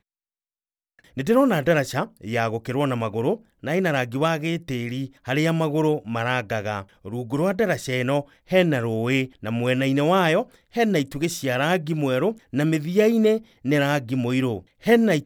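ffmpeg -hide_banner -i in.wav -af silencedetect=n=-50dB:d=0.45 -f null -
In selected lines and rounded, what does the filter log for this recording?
silence_start: 0.00
silence_end: 0.99 | silence_duration: 0.99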